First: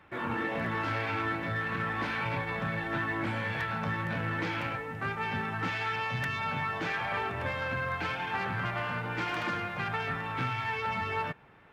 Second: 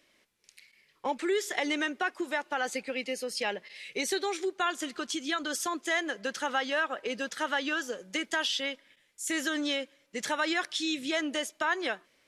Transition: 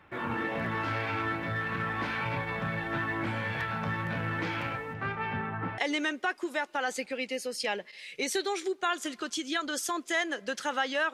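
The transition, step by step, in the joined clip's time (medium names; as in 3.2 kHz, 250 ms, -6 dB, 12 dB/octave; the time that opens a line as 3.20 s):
first
4.93–5.78 s: low-pass 5.4 kHz -> 1.1 kHz
5.78 s: go over to second from 1.55 s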